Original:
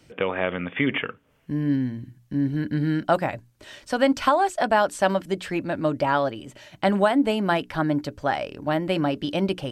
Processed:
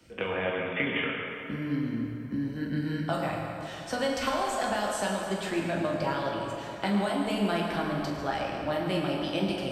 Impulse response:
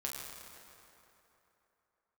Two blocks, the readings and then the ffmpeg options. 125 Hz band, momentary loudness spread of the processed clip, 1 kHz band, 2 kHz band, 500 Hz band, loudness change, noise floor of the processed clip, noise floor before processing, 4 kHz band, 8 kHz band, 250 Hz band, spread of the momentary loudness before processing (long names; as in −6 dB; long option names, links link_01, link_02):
−5.5 dB, 6 LU, −7.0 dB, −4.0 dB, −6.5 dB, −6.0 dB, −39 dBFS, −59 dBFS, −2.0 dB, +0.5 dB, −6.0 dB, 10 LU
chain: -filter_complex "[0:a]acrossover=split=130|3000[link_01][link_02][link_03];[link_02]acompressor=threshold=-27dB:ratio=6[link_04];[link_01][link_04][link_03]amix=inputs=3:normalize=0,acrossover=split=170[link_05][link_06];[link_05]alimiter=level_in=14dB:limit=-24dB:level=0:latency=1,volume=-14dB[link_07];[link_07][link_06]amix=inputs=2:normalize=0[link_08];[1:a]atrim=start_sample=2205[link_09];[link_08][link_09]afir=irnorm=-1:irlink=0"